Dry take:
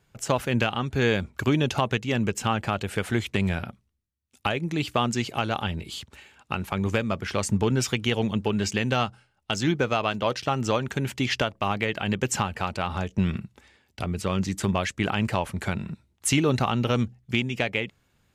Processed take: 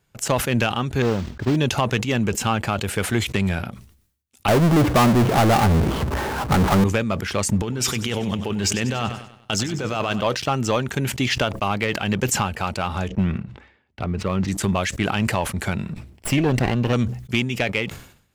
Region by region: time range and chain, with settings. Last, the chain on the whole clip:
0:01.02–0:01.56: running median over 41 samples + noise that follows the level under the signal 11 dB + high-frequency loss of the air 180 metres
0:04.48–0:06.84: low-pass filter 1,200 Hz 24 dB per octave + power curve on the samples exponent 0.35
0:07.62–0:10.21: compressor whose output falls as the input rises −28 dBFS + repeating echo 96 ms, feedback 57%, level −14 dB
0:13.08–0:14.48: low-pass filter 2,300 Hz + hard clipping −15 dBFS
0:15.93–0:16.93: lower of the sound and its delayed copy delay 0.38 ms + high-shelf EQ 3,800 Hz −11 dB
whole clip: high-shelf EQ 8,400 Hz +6 dB; leveller curve on the samples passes 1; level that may fall only so fast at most 94 dB per second

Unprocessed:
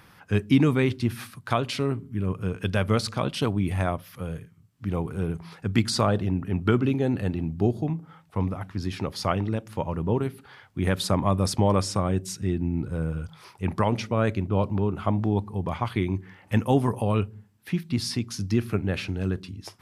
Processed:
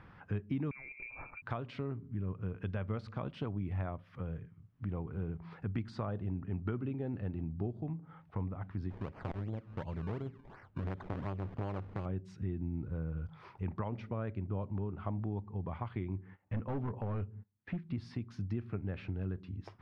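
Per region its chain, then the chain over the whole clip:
0:00.71–0:01.42: downward compressor 5 to 1, threshold −33 dBFS + parametric band 91 Hz +7 dB 1.4 octaves + voice inversion scrambler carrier 2,500 Hz
0:08.90–0:12.06: high-frequency loss of the air 200 metres + sample-and-hold swept by an LFO 23× 2.8 Hz + saturating transformer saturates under 580 Hz
0:16.16–0:17.89: noise gate −49 dBFS, range −19 dB + high-shelf EQ 3,700 Hz −9 dB + gain into a clipping stage and back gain 21 dB
whole clip: downward compressor 2.5 to 1, threshold −38 dBFS; low-pass filter 2,000 Hz 12 dB per octave; low-shelf EQ 100 Hz +8.5 dB; level −3.5 dB

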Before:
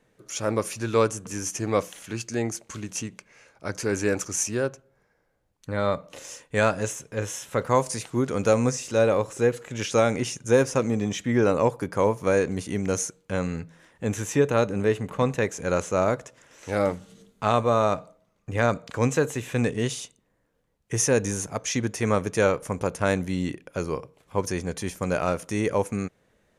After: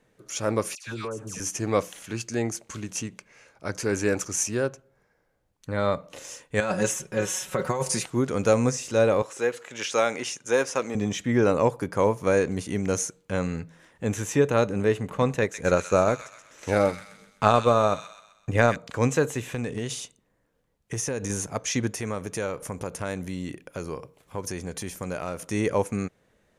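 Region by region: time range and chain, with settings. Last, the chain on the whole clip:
0:00.75–0:01.40: all-pass dispersion lows, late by 114 ms, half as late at 1,500 Hz + downward compressor, threshold −30 dBFS
0:06.60–0:08.06: comb filter 5.4 ms, depth 71% + compressor whose output falls as the input rises −24 dBFS
0:09.22–0:10.95: meter weighting curve A + floating-point word with a short mantissa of 6 bits
0:15.41–0:18.76: transient designer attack +6 dB, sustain −4 dB + delay with a high-pass on its return 128 ms, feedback 45%, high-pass 2,200 Hz, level −5 dB
0:19.43–0:21.30: downward compressor 12 to 1, threshold −25 dBFS + hard clipping −21 dBFS
0:21.94–0:25.45: downward compressor 2 to 1, threshold −32 dBFS + high-shelf EQ 11,000 Hz +8.5 dB
whole clip: no processing

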